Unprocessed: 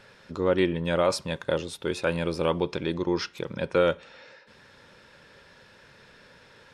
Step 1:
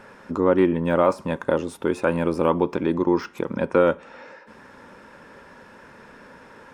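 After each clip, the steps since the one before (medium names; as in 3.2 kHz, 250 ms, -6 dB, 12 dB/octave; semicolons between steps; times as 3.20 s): de-esser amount 85%; ten-band graphic EQ 125 Hz -5 dB, 250 Hz +9 dB, 1 kHz +7 dB, 4 kHz -11 dB; in parallel at -2 dB: compression, threshold -30 dBFS, peak gain reduction 15 dB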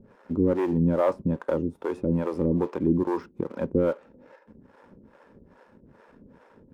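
tilt shelf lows +9.5 dB, about 860 Hz; waveshaping leveller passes 1; harmonic tremolo 2.4 Hz, depth 100%, crossover 430 Hz; trim -6.5 dB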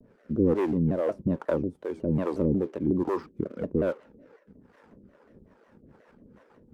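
rotary cabinet horn 1.2 Hz, later 7 Hz, at 5.19 s; vibrato with a chosen wave saw down 5.5 Hz, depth 250 cents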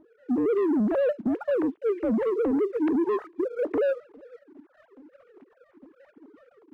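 formants replaced by sine waves; peak limiter -24.5 dBFS, peak gain reduction 10 dB; waveshaping leveller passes 1; trim +5 dB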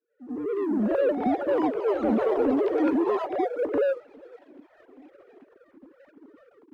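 fade-in on the opening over 0.98 s; ever faster or slower copies 524 ms, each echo +5 st, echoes 3, each echo -6 dB; reverse echo 90 ms -10 dB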